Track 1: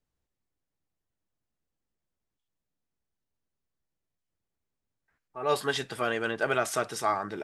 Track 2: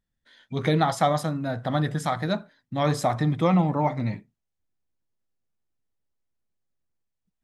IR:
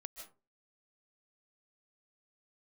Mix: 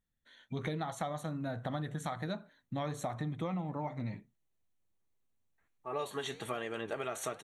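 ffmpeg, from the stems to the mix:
-filter_complex "[0:a]bandreject=f=1.5k:w=8,flanger=delay=5.1:depth=7.9:regen=85:speed=1.3:shape=triangular,adelay=500,volume=2.5dB[a];[1:a]volume=-4.5dB[b];[a][b]amix=inputs=2:normalize=0,asuperstop=centerf=5000:order=8:qfactor=4.8,acompressor=threshold=-34dB:ratio=6"

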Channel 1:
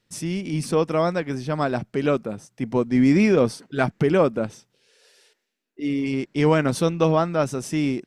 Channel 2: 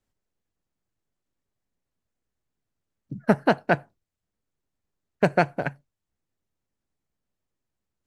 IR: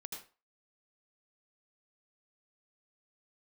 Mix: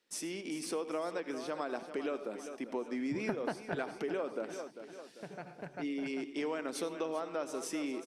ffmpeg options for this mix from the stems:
-filter_complex "[0:a]acompressor=threshold=-28dB:ratio=2,highpass=f=280:w=0.5412,highpass=f=280:w=1.3066,volume=-7dB,asplit=4[a][b][c][d];[b]volume=-7dB[e];[c]volume=-11dB[f];[1:a]alimiter=limit=-11.5dB:level=0:latency=1:release=437,volume=-5dB,asplit=3[g][h][i];[h]volume=-18dB[j];[i]volume=-16.5dB[k];[d]apad=whole_len=355499[l];[g][l]sidechaingate=range=-24dB:threshold=-57dB:ratio=16:detection=peak[m];[2:a]atrim=start_sample=2205[n];[e][j]amix=inputs=2:normalize=0[o];[o][n]afir=irnorm=-1:irlink=0[p];[f][k]amix=inputs=2:normalize=0,aecho=0:1:395|790|1185|1580|1975|2370|2765:1|0.47|0.221|0.104|0.0488|0.0229|0.0108[q];[a][m][p][q]amix=inputs=4:normalize=0,acompressor=threshold=-32dB:ratio=6"

